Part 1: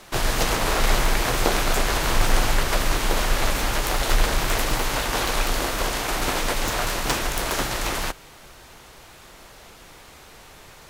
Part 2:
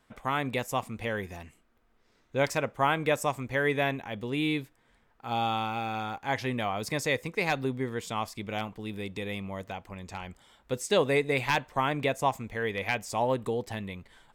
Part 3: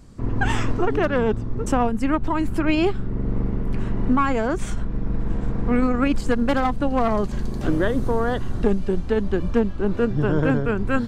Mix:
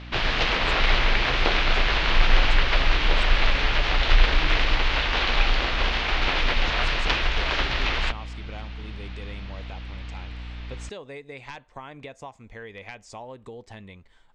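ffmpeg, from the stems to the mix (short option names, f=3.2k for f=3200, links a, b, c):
-filter_complex "[0:a]lowpass=f=4.5k:w=0.5412,lowpass=f=4.5k:w=1.3066,equalizer=f=2.7k:w=0.78:g=10,aeval=exprs='val(0)+0.02*(sin(2*PI*60*n/s)+sin(2*PI*2*60*n/s)/2+sin(2*PI*3*60*n/s)/3+sin(2*PI*4*60*n/s)/4+sin(2*PI*5*60*n/s)/5)':c=same,volume=-4.5dB[a];[1:a]acompressor=threshold=-31dB:ratio=6,volume=-5dB[b];[a][b]amix=inputs=2:normalize=0,lowpass=f=7.5k:w=0.5412,lowpass=f=7.5k:w=1.3066,asubboost=boost=2.5:cutoff=73"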